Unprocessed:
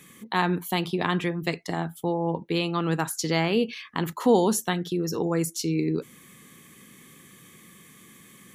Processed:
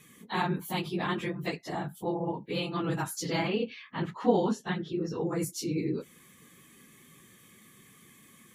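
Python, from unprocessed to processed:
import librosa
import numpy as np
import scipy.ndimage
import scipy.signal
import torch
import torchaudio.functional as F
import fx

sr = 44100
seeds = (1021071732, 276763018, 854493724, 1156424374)

y = fx.phase_scramble(x, sr, seeds[0], window_ms=50)
y = fx.lowpass(y, sr, hz=3700.0, slope=12, at=(3.48, 5.27))
y = y * 10.0 ** (-5.5 / 20.0)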